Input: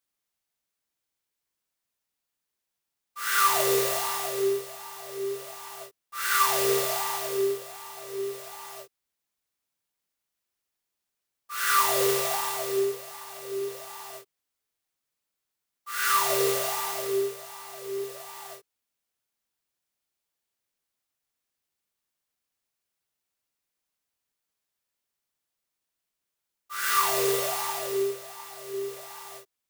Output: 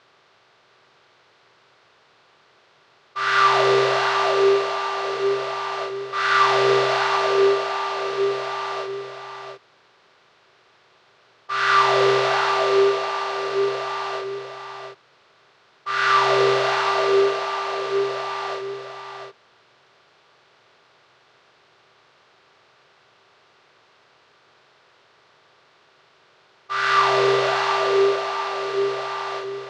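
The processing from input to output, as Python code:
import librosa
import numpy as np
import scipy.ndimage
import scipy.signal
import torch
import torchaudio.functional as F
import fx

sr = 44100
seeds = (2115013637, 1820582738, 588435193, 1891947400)

y = fx.bin_compress(x, sr, power=0.6)
y = scipy.signal.sosfilt(scipy.signal.butter(4, 4400.0, 'lowpass', fs=sr, output='sos'), y)
y = fx.peak_eq(y, sr, hz=140.0, db=3.5, octaves=1.9)
y = y + 10.0 ** (-7.5 / 20.0) * np.pad(y, (int(699 * sr / 1000.0), 0))[:len(y)]
y = F.gain(torch.from_numpy(y), 4.5).numpy()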